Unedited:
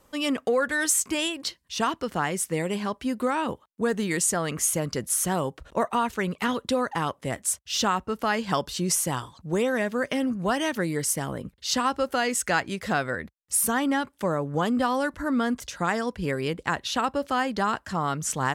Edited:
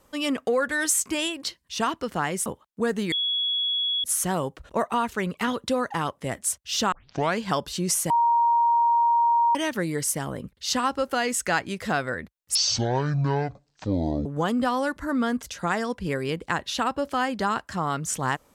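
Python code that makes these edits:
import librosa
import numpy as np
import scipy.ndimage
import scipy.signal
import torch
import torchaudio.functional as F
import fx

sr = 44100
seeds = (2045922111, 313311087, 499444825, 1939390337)

y = fx.edit(x, sr, fx.cut(start_s=2.46, length_s=1.01),
    fx.bleep(start_s=4.13, length_s=0.92, hz=3360.0, db=-22.5),
    fx.tape_start(start_s=7.93, length_s=0.46),
    fx.bleep(start_s=9.11, length_s=1.45, hz=938.0, db=-17.0),
    fx.speed_span(start_s=13.56, length_s=0.87, speed=0.51), tone=tone)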